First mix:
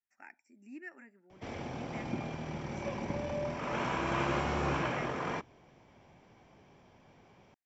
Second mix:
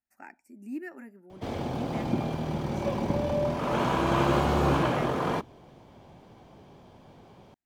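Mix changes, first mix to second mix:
speech: add bass shelf 450 Hz +4 dB; master: remove rippled Chebyshev low-pass 7.6 kHz, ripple 9 dB

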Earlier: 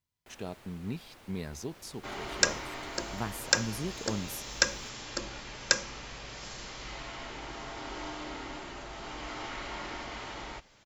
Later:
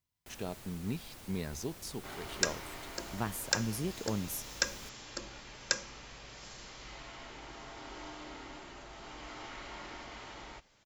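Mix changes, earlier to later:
first sound: add tone controls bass +7 dB, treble +8 dB; second sound -6.5 dB; master: add treble shelf 9.2 kHz +4 dB

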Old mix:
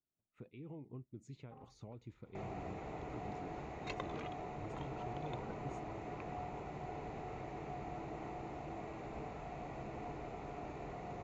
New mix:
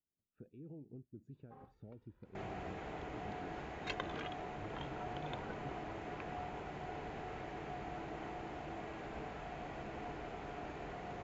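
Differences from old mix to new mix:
speech: add boxcar filter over 42 samples; master: add graphic EQ with 31 bands 125 Hz -5 dB, 1.6 kHz +11 dB, 3.15 kHz +9 dB, 5 kHz +4 dB

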